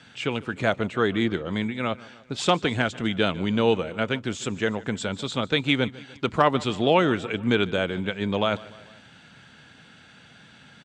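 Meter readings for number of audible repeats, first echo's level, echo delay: 3, -20.5 dB, 149 ms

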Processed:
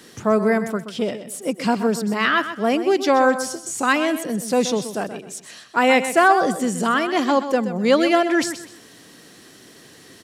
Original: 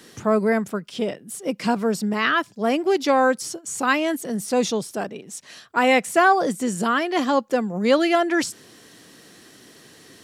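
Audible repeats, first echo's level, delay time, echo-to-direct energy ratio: 3, -11.0 dB, 127 ms, -10.5 dB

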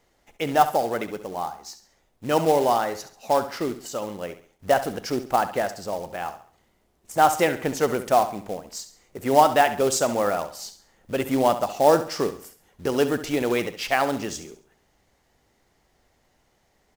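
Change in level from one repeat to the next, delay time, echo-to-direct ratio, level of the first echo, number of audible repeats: -8.5 dB, 68 ms, -11.5 dB, -12.0 dB, 3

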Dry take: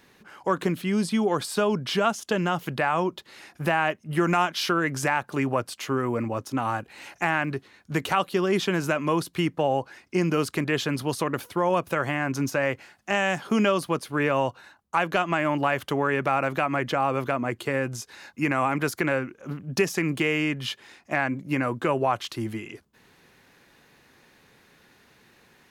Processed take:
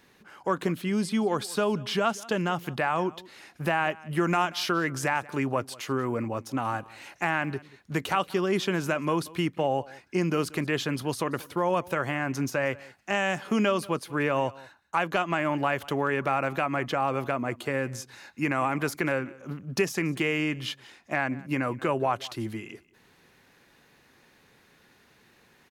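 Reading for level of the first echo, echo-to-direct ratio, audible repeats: -21.5 dB, -21.5 dB, 1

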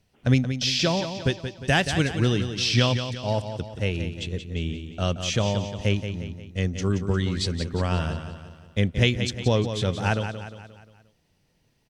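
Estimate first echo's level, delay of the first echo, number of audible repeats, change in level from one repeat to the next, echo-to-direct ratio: -9.0 dB, 177 ms, 5, -6.5 dB, -8.0 dB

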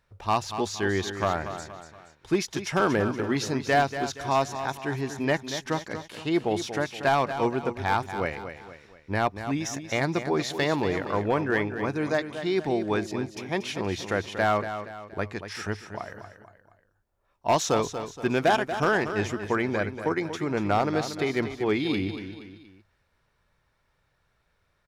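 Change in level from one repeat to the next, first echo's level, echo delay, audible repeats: -7.5 dB, -10.0 dB, 236 ms, 3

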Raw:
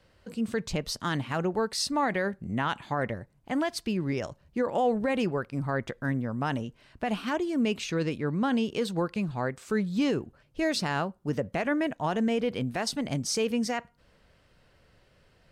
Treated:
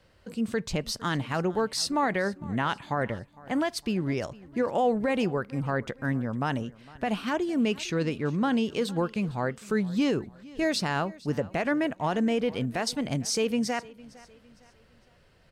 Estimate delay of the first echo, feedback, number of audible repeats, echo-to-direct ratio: 457 ms, 39%, 2, -21.0 dB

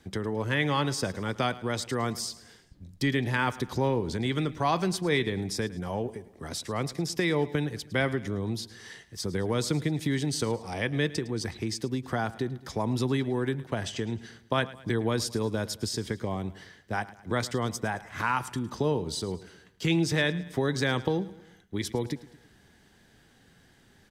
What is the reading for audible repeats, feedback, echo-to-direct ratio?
3, 47%, -17.0 dB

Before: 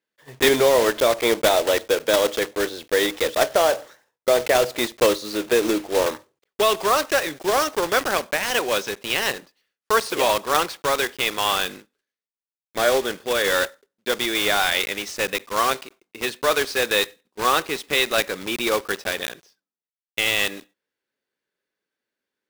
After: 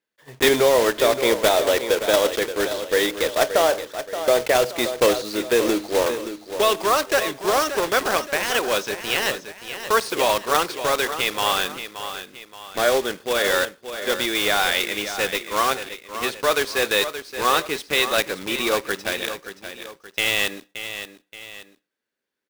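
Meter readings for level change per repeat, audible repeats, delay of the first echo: -7.5 dB, 2, 575 ms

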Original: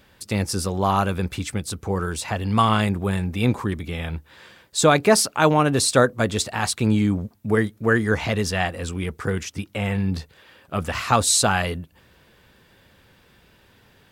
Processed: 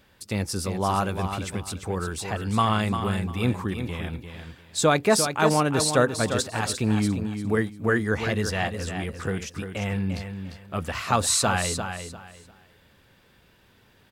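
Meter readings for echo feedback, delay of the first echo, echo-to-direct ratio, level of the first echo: 24%, 348 ms, -7.5 dB, -8.0 dB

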